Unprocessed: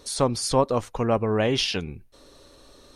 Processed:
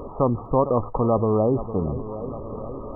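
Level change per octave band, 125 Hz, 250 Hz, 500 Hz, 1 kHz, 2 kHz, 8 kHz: +4.0 dB, +3.5 dB, +2.5 dB, +2.0 dB, under -35 dB, under -40 dB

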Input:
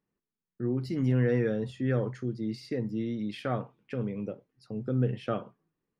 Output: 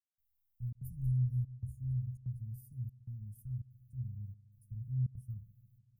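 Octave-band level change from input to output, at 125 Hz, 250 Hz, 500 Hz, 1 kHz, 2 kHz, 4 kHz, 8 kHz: -3.5 dB, -18.5 dB, under -40 dB, under -40 dB, under -40 dB, under -35 dB, no reading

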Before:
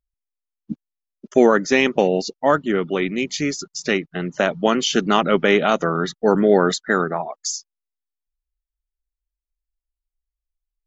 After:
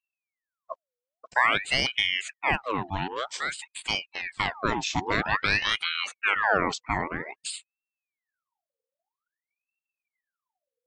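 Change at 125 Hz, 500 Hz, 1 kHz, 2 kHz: -8.0 dB, -17.0 dB, -5.0 dB, -1.5 dB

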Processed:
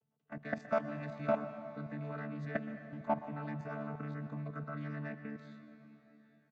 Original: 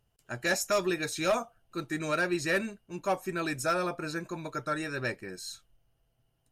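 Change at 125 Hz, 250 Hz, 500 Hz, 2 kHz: -0.5 dB, -6.0 dB, -7.5 dB, -13.5 dB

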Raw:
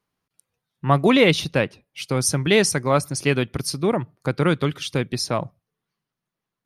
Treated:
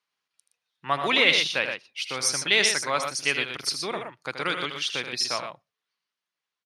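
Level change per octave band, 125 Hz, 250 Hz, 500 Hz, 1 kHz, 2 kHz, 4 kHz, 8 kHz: -20.5 dB, -15.5 dB, -10.0 dB, -4.0 dB, +1.5 dB, +3.0 dB, -1.5 dB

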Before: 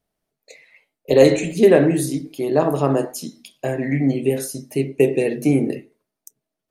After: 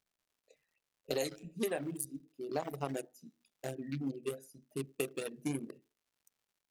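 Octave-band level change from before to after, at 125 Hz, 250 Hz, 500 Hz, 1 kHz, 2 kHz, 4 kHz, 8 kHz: -21.0 dB, -21.0 dB, -22.5 dB, -17.0 dB, -18.0 dB, -13.5 dB, -13.5 dB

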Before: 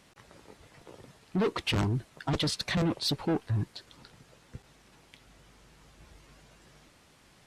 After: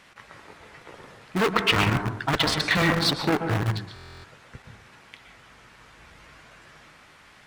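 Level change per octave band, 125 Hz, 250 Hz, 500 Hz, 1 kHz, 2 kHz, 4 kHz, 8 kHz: +4.5 dB, +4.5 dB, +6.0 dB, +12.0 dB, +14.0 dB, +8.0 dB, +5.5 dB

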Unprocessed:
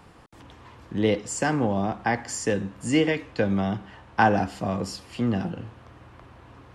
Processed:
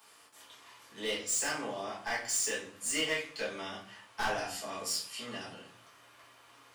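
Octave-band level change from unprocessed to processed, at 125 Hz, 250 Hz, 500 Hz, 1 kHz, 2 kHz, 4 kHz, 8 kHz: -24.5 dB, -20.0 dB, -12.5 dB, -12.5 dB, -6.0 dB, +1.0 dB, +2.5 dB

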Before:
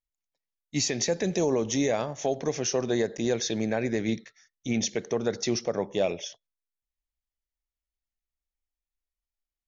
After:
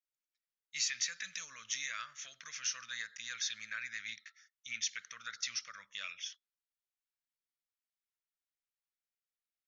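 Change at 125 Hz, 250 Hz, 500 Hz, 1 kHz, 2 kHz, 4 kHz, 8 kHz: -35.5 dB, under -40 dB, under -40 dB, -15.0 dB, -2.5 dB, -4.5 dB, no reading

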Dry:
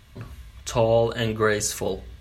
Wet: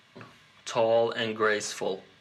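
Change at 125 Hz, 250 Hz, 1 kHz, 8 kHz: -15.5 dB, -6.5 dB, -2.0 dB, -9.0 dB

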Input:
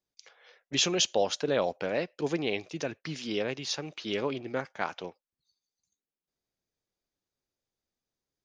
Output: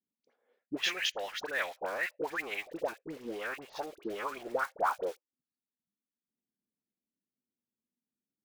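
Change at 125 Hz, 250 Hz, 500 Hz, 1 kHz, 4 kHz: -18.5 dB, -9.0 dB, -6.5 dB, +1.0 dB, -6.0 dB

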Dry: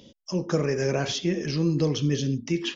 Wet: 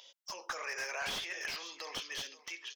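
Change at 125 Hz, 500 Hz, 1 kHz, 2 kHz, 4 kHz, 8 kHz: -37.5 dB, -21.0 dB, -4.5 dB, -1.5 dB, -6.5 dB, no reading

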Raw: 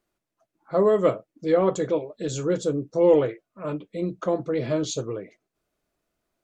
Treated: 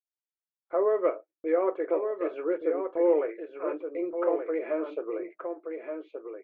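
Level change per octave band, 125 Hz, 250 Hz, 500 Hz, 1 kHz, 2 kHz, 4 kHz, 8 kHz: under -35 dB, -6.0 dB, -4.0 dB, -3.5 dB, -3.0 dB, under -20 dB, no reading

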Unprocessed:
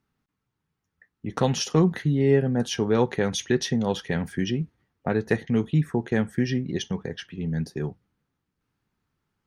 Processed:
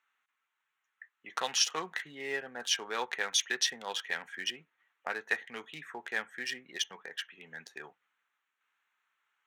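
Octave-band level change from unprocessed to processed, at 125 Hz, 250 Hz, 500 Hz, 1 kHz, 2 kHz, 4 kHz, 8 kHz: -36.5 dB, -27.0 dB, -17.5 dB, -5.5 dB, +0.5 dB, +1.5 dB, +1.5 dB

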